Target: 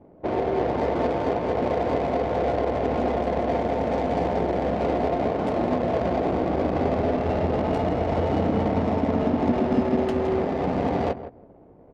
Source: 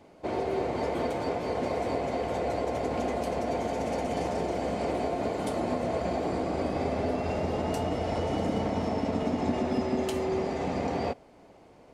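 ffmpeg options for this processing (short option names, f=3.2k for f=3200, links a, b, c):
-af "aecho=1:1:164|328:0.266|0.0452,adynamicsmooth=sensitivity=3.5:basefreq=590,volume=6dB"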